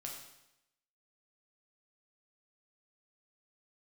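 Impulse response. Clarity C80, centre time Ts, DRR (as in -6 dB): 6.5 dB, 41 ms, -1.0 dB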